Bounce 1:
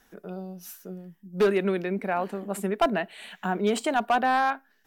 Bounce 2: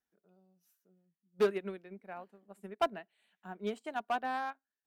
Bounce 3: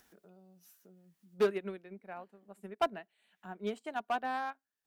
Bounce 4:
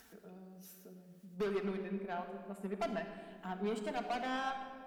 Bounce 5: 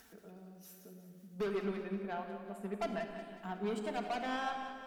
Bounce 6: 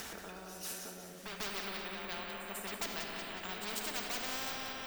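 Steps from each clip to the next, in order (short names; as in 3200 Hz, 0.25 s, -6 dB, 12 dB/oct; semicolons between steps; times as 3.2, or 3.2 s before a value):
HPF 45 Hz; upward expander 2.5:1, over -34 dBFS; gain -5 dB
upward compressor, threshold -49 dBFS
limiter -29.5 dBFS, peak gain reduction 10.5 dB; tube stage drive 39 dB, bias 0.2; reverb RT60 2.0 s, pre-delay 4 ms, DRR 2.5 dB; gain +5 dB
split-band echo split 500 Hz, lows 0.121 s, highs 0.183 s, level -10.5 dB
careless resampling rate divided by 2×, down filtered, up hold; pre-echo 0.145 s -13 dB; spectral compressor 4:1; gain +4 dB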